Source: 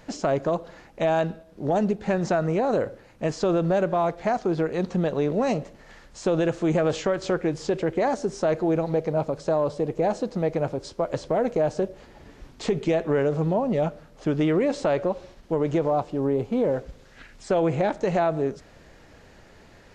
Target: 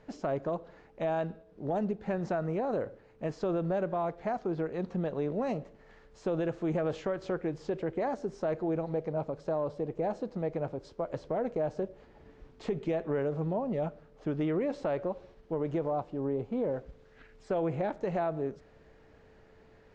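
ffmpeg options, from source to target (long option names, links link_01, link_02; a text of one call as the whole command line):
ffmpeg -i in.wav -af "aemphasis=mode=reproduction:type=75fm,aeval=exprs='val(0)+0.00251*sin(2*PI*440*n/s)':channel_layout=same,volume=-9dB" out.wav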